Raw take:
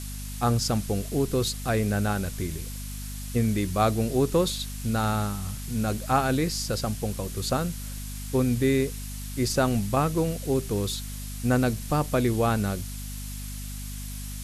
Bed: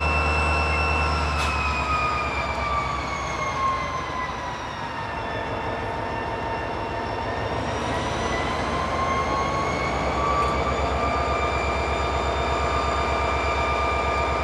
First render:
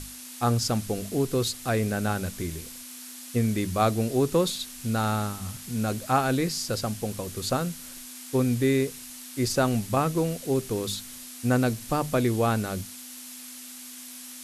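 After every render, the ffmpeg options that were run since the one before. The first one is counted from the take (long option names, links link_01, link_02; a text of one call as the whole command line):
ffmpeg -i in.wav -af "bandreject=frequency=50:width_type=h:width=6,bandreject=frequency=100:width_type=h:width=6,bandreject=frequency=150:width_type=h:width=6,bandreject=frequency=200:width_type=h:width=6" out.wav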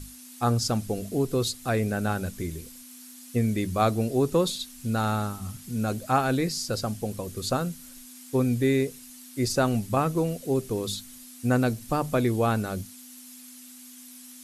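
ffmpeg -i in.wav -af "afftdn=noise_reduction=8:noise_floor=-43" out.wav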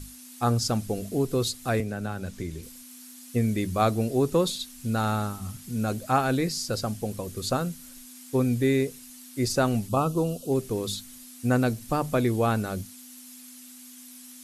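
ffmpeg -i in.wav -filter_complex "[0:a]asettb=1/sr,asplit=3[link_01][link_02][link_03];[link_01]atrim=end=1.804[link_04];[link_02]atrim=start=1.8:end=2.63,asetpts=PTS-STARTPTS,afade=type=in:duration=0.004:curve=qsin,afade=type=out:start_time=0.826:duration=0.004:curve=qsin,acrossover=split=150|7600[link_05][link_06][link_07];[link_05]acompressor=threshold=-35dB:ratio=4[link_08];[link_06]acompressor=threshold=-31dB:ratio=4[link_09];[link_07]acompressor=threshold=-59dB:ratio=4[link_10];[link_08][link_09][link_10]amix=inputs=3:normalize=0[link_11];[link_03]atrim=start=2.626[link_12];[link_04][link_11]acrossfade=duration=0.004:curve1=hsin:curve2=qsin[link_13];[link_13][link_12]acrossfade=duration=0.004:curve1=qsin:curve2=hsin,asettb=1/sr,asplit=3[link_14][link_15][link_16];[link_14]atrim=end=9.884[link_17];[link_15]atrim=start=9.88:end=10.52,asetpts=PTS-STARTPTS,afade=type=in:duration=0.004:curve=qsin,afade=type=out:start_time=0.636:duration=0.004:curve=qsin,asuperstop=centerf=1900:order=8:qfactor=1.6[link_18];[link_16]atrim=start=10.516[link_19];[link_17][link_18]acrossfade=duration=0.004:curve1=hsin:curve2=qsin[link_20];[link_20][link_19]acrossfade=duration=0.004:curve1=qsin:curve2=hsin" out.wav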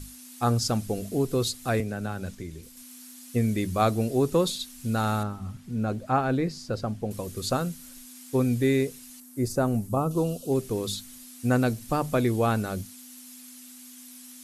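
ffmpeg -i in.wav -filter_complex "[0:a]asettb=1/sr,asplit=3[link_01][link_02][link_03];[link_01]atrim=end=5.234[link_04];[link_02]atrim=start=5.23:end=7.11,asetpts=PTS-STARTPTS,afade=type=in:duration=0.004:curve=qsin,afade=type=out:start_time=1.876:duration=0.004:curve=qsin,lowpass=frequency=1600:poles=1[link_05];[link_03]atrim=start=7.106[link_06];[link_04][link_05]acrossfade=duration=0.004:curve1=hsin:curve2=qsin[link_07];[link_07][link_06]acrossfade=duration=0.004:curve1=qsin:curve2=hsin,asettb=1/sr,asplit=3[link_08][link_09][link_10];[link_08]atrim=end=9.204[link_11];[link_09]atrim=start=9.2:end=10.11,asetpts=PTS-STARTPTS,afade=type=in:duration=0.004:curve=qsin,afade=type=out:start_time=0.906:duration=0.004:curve=qsin,equalizer=frequency=3400:width_type=o:width=2.1:gain=-13.5[link_12];[link_10]atrim=start=10.106[link_13];[link_11][link_12]acrossfade=duration=0.004:curve1=hsin:curve2=qsin[link_14];[link_14][link_13]acrossfade=duration=0.004:curve1=qsin:curve2=hsin,asplit=3[link_15][link_16][link_17];[link_15]atrim=end=2.352[link_18];[link_16]atrim=start=2.348:end=2.772,asetpts=PTS-STARTPTS,volume=-4dB[link_19];[link_17]atrim=start=2.768[link_20];[link_18][link_19]acrossfade=duration=0.004:curve1=hsin:curve2=hsin[link_21];[link_21][link_20]acrossfade=duration=0.004:curve1=hsin:curve2=hsin" out.wav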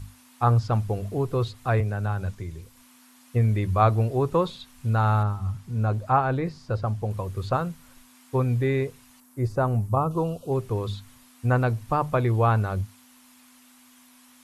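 ffmpeg -i in.wav -filter_complex "[0:a]acrossover=split=3200[link_01][link_02];[link_02]acompressor=threshold=-56dB:ratio=4:attack=1:release=60[link_03];[link_01][link_03]amix=inputs=2:normalize=0,equalizer=frequency=100:width_type=o:width=0.67:gain=10,equalizer=frequency=250:width_type=o:width=0.67:gain=-7,equalizer=frequency=1000:width_type=o:width=0.67:gain=8" out.wav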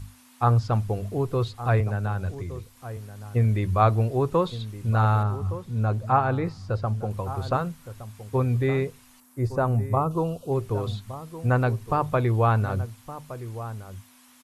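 ffmpeg -i in.wav -filter_complex "[0:a]asplit=2[link_01][link_02];[link_02]adelay=1166,volume=-13dB,highshelf=frequency=4000:gain=-26.2[link_03];[link_01][link_03]amix=inputs=2:normalize=0" out.wav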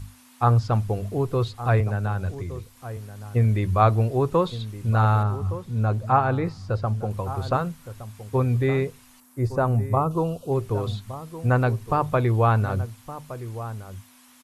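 ffmpeg -i in.wav -af "volume=1.5dB" out.wav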